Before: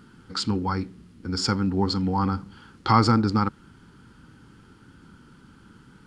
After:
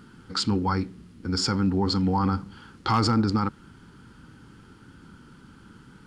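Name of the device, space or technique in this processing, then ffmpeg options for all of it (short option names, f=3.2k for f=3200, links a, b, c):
clipper into limiter: -af "asoftclip=type=hard:threshold=-10dB,alimiter=limit=-16dB:level=0:latency=1:release=12,volume=1.5dB"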